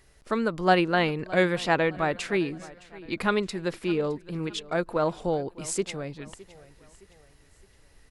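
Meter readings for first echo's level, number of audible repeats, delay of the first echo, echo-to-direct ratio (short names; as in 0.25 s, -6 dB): -20.0 dB, 3, 0.614 s, -19.0 dB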